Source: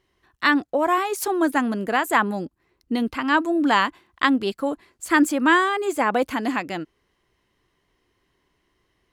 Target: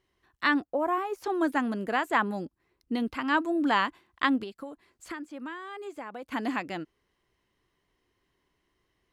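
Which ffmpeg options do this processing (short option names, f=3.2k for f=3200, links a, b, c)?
-filter_complex "[0:a]acrossover=split=5400[a][b];[b]acompressor=threshold=-48dB:ratio=4:attack=1:release=60[c];[a][c]amix=inputs=2:normalize=0,asettb=1/sr,asplit=3[d][e][f];[d]atrim=end=0.614[g];[e]atrim=start=0.61:end=1.24,asetpts=PTS-STARTPTS,afade=t=in:d=0.004:c=qsin,afade=t=out:st=0.626:d=0.004:c=qsin,equalizer=f=125:t=o:w=1:g=-5,equalizer=f=2k:t=o:w=1:g=-5,equalizer=f=4k:t=o:w=1:g=-10,equalizer=f=8k:t=o:w=1:g=-7[h];[f]atrim=start=1.236[i];[g][h]acrossfade=d=0.004:c1=hsin:c2=qsin[j];[j][i]acrossfade=d=0.004:c1=qsin:c2=hsin,asettb=1/sr,asplit=3[k][l][m];[k]atrim=end=4.434[n];[l]atrim=start=4.43:end=6.32,asetpts=PTS-STARTPTS,afade=t=in:d=0.004:c=qsin,afade=t=out:st=1.886:d=0.004:c=qsin,acompressor=threshold=-31dB:ratio=8[o];[m]atrim=start=6.316[p];[n][o]acrossfade=d=0.004:c1=hsin:c2=qsin[q];[q][p]acrossfade=d=0.004:c1=qsin:c2=hsin,volume=-6dB"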